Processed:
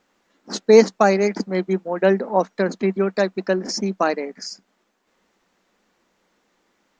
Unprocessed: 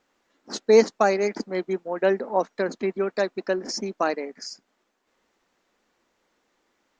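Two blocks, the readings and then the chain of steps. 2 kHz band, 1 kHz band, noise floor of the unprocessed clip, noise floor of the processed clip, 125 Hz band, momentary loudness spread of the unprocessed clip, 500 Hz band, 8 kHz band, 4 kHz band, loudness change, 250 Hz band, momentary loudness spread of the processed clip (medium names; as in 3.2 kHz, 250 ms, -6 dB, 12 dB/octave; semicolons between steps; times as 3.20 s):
+4.0 dB, +4.0 dB, -73 dBFS, -68 dBFS, +10.5 dB, 14 LU, +4.0 dB, no reading, +4.0 dB, +4.5 dB, +7.5 dB, 14 LU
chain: peaking EQ 190 Hz +8 dB 0.3 oct; trim +4 dB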